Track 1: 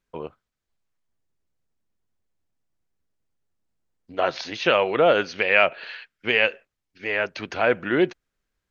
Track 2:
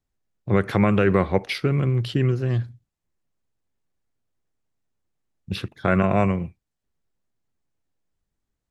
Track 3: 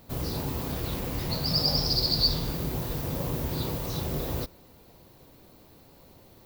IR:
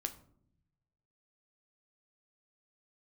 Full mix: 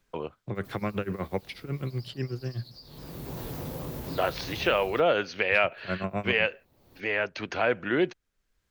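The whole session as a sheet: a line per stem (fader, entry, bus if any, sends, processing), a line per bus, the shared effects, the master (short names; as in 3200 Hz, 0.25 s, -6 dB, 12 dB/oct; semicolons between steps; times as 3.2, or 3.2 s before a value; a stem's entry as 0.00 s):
-4.0 dB, 0.00 s, no send, dry
-10.0 dB, 0.00 s, no send, tremolo 8.1 Hz, depth 92%
-3.5 dB, 0.55 s, no send, compressor 6:1, threshold -33 dBFS, peak gain reduction 14 dB; shaped vibrato saw down 3.7 Hz, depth 160 cents; auto duck -18 dB, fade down 0.80 s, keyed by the second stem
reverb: off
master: three-band squash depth 40%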